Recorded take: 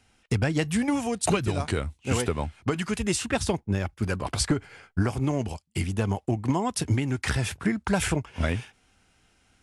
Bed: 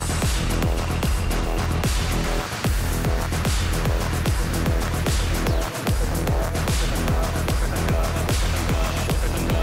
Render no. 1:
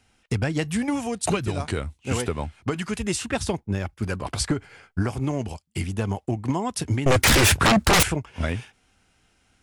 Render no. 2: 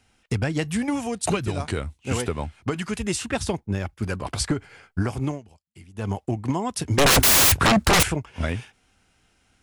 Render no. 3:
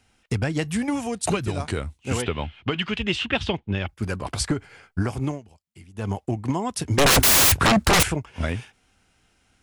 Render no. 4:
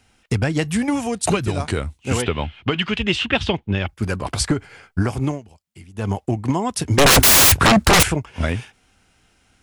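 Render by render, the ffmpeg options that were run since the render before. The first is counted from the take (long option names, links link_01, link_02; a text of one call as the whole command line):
ffmpeg -i in.wav -filter_complex "[0:a]asettb=1/sr,asplit=3[link_01][link_02][link_03];[link_01]atrim=end=7.064[link_04];[link_02]atrim=start=7.06:end=8.03,asetpts=PTS-STARTPTS,afade=type=in:duration=0.004:curve=qsin,afade=type=out:start_time=0.966:duration=0.004:curve=qsin,aeval=exprs='0.224*sin(PI/2*6.31*val(0)/0.224)':channel_layout=same[link_05];[link_03]atrim=start=8.026[link_06];[link_04][link_05]acrossfade=duration=0.004:curve1=hsin:curve2=qsin[link_07];[link_07][link_06]acrossfade=duration=0.004:curve1=qsin:curve2=hsin" out.wav
ffmpeg -i in.wav -filter_complex "[0:a]asettb=1/sr,asplit=3[link_01][link_02][link_03];[link_01]atrim=end=6.984[link_04];[link_02]atrim=start=6.98:end=7.52,asetpts=PTS-STARTPTS,afade=type=in:duration=0.004:curve=qsin,afade=type=out:start_time=0.536:duration=0.004:curve=qsin,aeval=exprs='0.237*sin(PI/2*7.08*val(0)/0.237)':channel_layout=same[link_05];[link_03]atrim=start=7.516[link_06];[link_04][link_05]acrossfade=duration=0.004:curve1=hsin:curve2=qsin[link_07];[link_07][link_06]acrossfade=duration=0.004:curve1=qsin:curve2=hsin,asplit=3[link_08][link_09][link_10];[link_08]atrim=end=5.41,asetpts=PTS-STARTPTS,afade=type=out:start_time=5.28:duration=0.13:silence=0.112202[link_11];[link_09]atrim=start=5.41:end=5.94,asetpts=PTS-STARTPTS,volume=-19dB[link_12];[link_10]atrim=start=5.94,asetpts=PTS-STARTPTS,afade=type=in:duration=0.13:silence=0.112202[link_13];[link_11][link_12][link_13]concat=n=3:v=0:a=1" out.wav
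ffmpeg -i in.wav -filter_complex "[0:a]asettb=1/sr,asplit=3[link_01][link_02][link_03];[link_01]atrim=end=2.224[link_04];[link_02]atrim=start=2.22:end=3.88,asetpts=PTS-STARTPTS,afade=type=in:duration=0.004:curve=qsin,afade=type=out:start_time=1.656:duration=0.004:curve=qsin,lowpass=frequency=3100:width_type=q:width=4.2[link_05];[link_03]atrim=start=3.876[link_06];[link_04][link_05]acrossfade=duration=0.004:curve1=hsin:curve2=qsin[link_07];[link_07][link_06]acrossfade=duration=0.004:curve1=qsin:curve2=hsin" out.wav
ffmpeg -i in.wav -af "volume=4.5dB" out.wav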